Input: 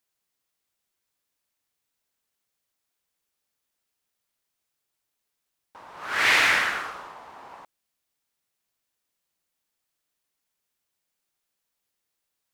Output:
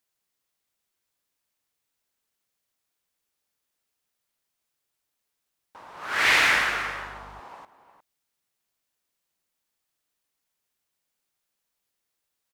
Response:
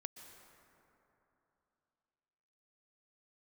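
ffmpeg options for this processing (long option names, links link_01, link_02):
-filter_complex "[0:a]asplit=2[link_01][link_02];[link_02]adelay=355.7,volume=-12dB,highshelf=frequency=4000:gain=-8[link_03];[link_01][link_03]amix=inputs=2:normalize=0,asettb=1/sr,asplit=3[link_04][link_05][link_06];[link_04]atrim=end=6.274[link_07];[link_05]atrim=start=6.27:end=7.4,asetpts=PTS-STARTPTS,afade=type=in:duration=0.004:curve=qsin,afade=type=out:start_time=1.126:duration=0.004:curve=qsin,aeval=exprs='val(0)+0.00398*(sin(2*PI*50*n/s)+sin(2*PI*2*50*n/s)/2+sin(2*PI*3*50*n/s)/3+sin(2*PI*4*50*n/s)/4+sin(2*PI*5*50*n/s)/5)':channel_layout=same[link_08];[link_06]atrim=start=7.396[link_09];[link_07][link_08]acrossfade=duration=0.004:curve1=hsin:curve2=qsin[link_10];[link_10][link_09]acrossfade=duration=0.004:curve1=qsin:curve2=hsin"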